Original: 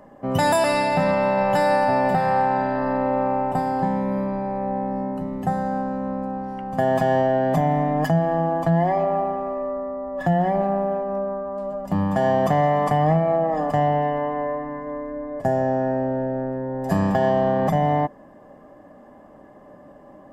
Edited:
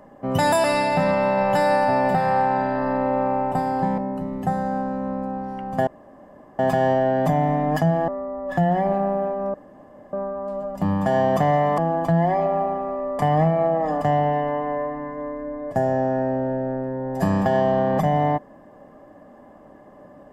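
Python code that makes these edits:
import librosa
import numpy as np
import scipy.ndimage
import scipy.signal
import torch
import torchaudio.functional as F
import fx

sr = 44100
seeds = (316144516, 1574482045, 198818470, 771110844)

y = fx.edit(x, sr, fx.cut(start_s=3.98, length_s=1.0),
    fx.insert_room_tone(at_s=6.87, length_s=0.72),
    fx.move(start_s=8.36, length_s=1.41, to_s=12.88),
    fx.insert_room_tone(at_s=11.23, length_s=0.59), tone=tone)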